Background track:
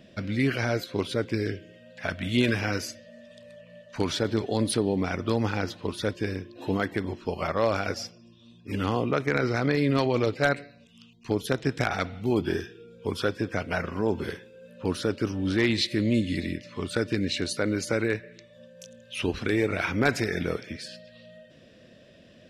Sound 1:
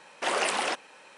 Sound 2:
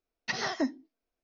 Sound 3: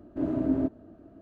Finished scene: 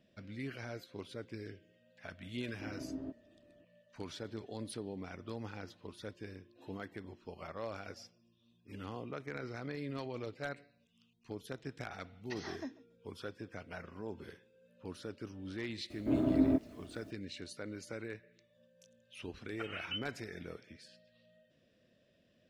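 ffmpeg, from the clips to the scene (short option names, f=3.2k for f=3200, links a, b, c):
-filter_complex "[3:a]asplit=2[a][b];[2:a]asplit=2[c][d];[0:a]volume=-17.5dB[e];[c]aecho=1:1:140|280:0.0944|0.0142[f];[b]acrusher=bits=10:mix=0:aa=0.000001[g];[d]lowpass=f=2.8k:t=q:w=0.5098,lowpass=f=2.8k:t=q:w=0.6013,lowpass=f=2.8k:t=q:w=0.9,lowpass=f=2.8k:t=q:w=2.563,afreqshift=-3300[h];[a]atrim=end=1.21,asetpts=PTS-STARTPTS,volume=-16.5dB,afade=t=in:d=0.004:c=hsin,afade=t=out:st=1.206:d=0.004:c=hsin,adelay=2440[i];[f]atrim=end=1.23,asetpts=PTS-STARTPTS,volume=-14.5dB,afade=t=in:d=0.004:c=hsin,afade=t=out:st=1.226:d=0.004:c=hsin,adelay=12020[j];[g]atrim=end=1.21,asetpts=PTS-STARTPTS,volume=-2dB,afade=t=in:d=0.004:c=hsin,afade=t=out:st=1.206:d=0.004:c=hsin,adelay=15900[k];[h]atrim=end=1.23,asetpts=PTS-STARTPTS,volume=-12dB,afade=t=in:d=0.004:c=hsin,afade=t=out:st=1.226:d=0.004:c=hsin,adelay=19310[l];[e][i][j][k][l]amix=inputs=5:normalize=0"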